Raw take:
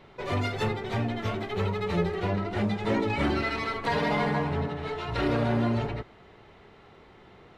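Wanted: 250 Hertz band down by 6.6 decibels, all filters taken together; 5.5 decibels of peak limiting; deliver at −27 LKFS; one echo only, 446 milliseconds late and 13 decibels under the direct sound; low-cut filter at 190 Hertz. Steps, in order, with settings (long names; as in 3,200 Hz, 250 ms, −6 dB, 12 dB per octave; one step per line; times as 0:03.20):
high-pass filter 190 Hz
parametric band 250 Hz −6.5 dB
brickwall limiter −22 dBFS
single-tap delay 446 ms −13 dB
level +5.5 dB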